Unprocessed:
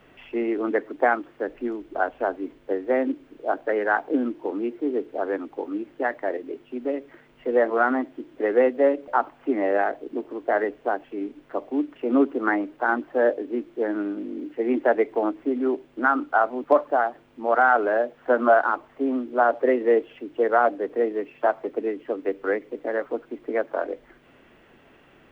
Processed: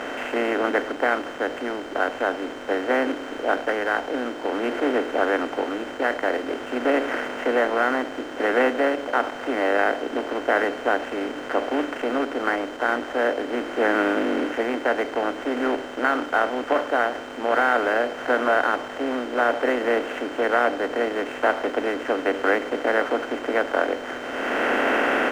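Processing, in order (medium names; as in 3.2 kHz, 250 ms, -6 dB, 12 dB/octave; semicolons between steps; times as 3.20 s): spectral levelling over time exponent 0.4; peaking EQ 2.8 kHz +13 dB 1.4 oct; level rider; whistle 3.1 kHz -34 dBFS; hysteresis with a dead band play -26 dBFS; trim -6.5 dB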